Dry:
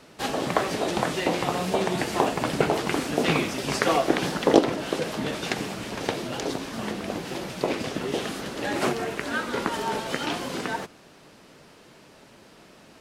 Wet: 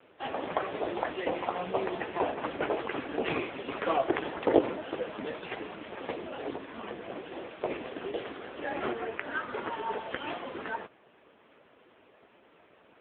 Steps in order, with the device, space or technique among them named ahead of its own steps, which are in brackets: 6.77–8.69 s: dynamic bell 190 Hz, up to -4 dB, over -48 dBFS, Q 4.4; telephone (band-pass 300–3200 Hz; trim -2.5 dB; AMR-NB 5.9 kbps 8 kHz)

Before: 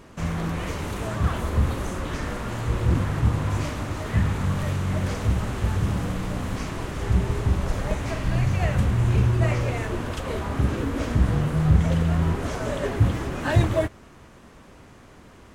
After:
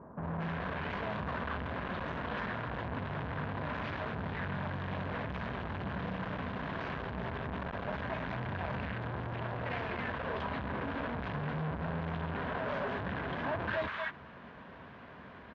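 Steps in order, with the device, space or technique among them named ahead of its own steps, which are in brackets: peaking EQ 3.7 kHz +2 dB; bands offset in time lows, highs 230 ms, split 1.1 kHz; guitar amplifier (valve stage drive 34 dB, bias 0.45; tone controls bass +2 dB, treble -7 dB; cabinet simulation 100–3800 Hz, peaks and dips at 110 Hz -7 dB, 330 Hz -7 dB, 670 Hz +4 dB, 1 kHz +7 dB, 1.6 kHz +8 dB)

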